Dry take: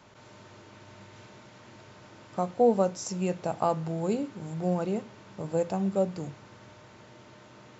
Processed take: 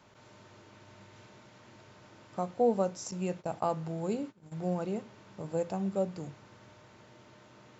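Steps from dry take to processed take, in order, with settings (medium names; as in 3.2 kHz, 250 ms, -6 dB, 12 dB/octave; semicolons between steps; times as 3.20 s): 3.11–4.52 s: gate -36 dBFS, range -19 dB; trim -4.5 dB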